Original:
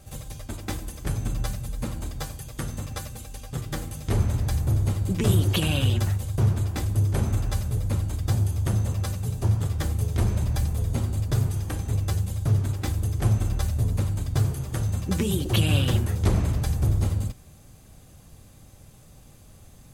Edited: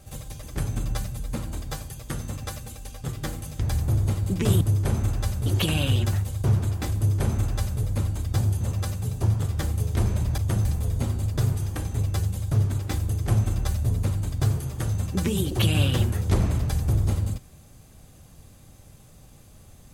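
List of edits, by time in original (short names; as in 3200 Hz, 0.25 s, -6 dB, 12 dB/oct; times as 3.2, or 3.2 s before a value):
0.43–0.92 cut
4.1–4.4 cut
6.9–7.75 copy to 5.4
8.55–8.82 move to 10.59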